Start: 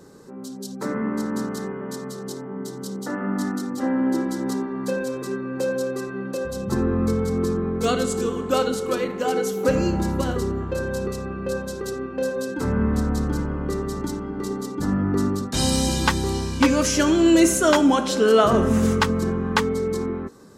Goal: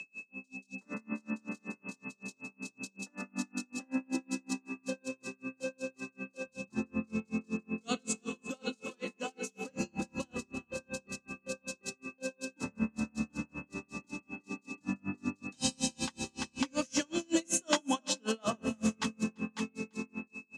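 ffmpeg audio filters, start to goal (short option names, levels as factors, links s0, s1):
-filter_complex "[0:a]aeval=exprs='val(0)+0.0282*sin(2*PI*2600*n/s)':c=same,highpass=160,equalizer=f=230:t=q:w=4:g=6,equalizer=f=410:t=q:w=4:g=-9,equalizer=f=1400:t=q:w=4:g=-4,equalizer=f=3200:t=q:w=4:g=4,equalizer=f=6500:t=q:w=4:g=3,lowpass=f=9100:w=0.5412,lowpass=f=9100:w=1.3066,aecho=1:1:341:0.224,acrossover=split=330|1600|4500[s0][s1][s2][s3];[s3]acontrast=70[s4];[s0][s1][s2][s4]amix=inputs=4:normalize=0,aeval=exprs='val(0)*pow(10,-37*(0.5-0.5*cos(2*PI*5.3*n/s))/20)':c=same,volume=0.376"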